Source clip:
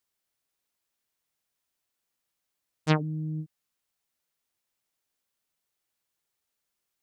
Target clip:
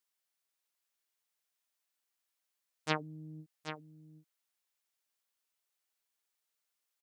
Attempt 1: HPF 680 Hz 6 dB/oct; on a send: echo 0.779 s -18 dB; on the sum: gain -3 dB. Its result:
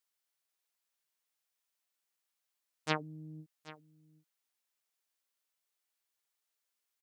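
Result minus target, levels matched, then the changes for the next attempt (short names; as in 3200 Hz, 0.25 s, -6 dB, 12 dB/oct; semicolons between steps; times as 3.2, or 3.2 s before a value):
echo-to-direct -8.5 dB
change: echo 0.779 s -9.5 dB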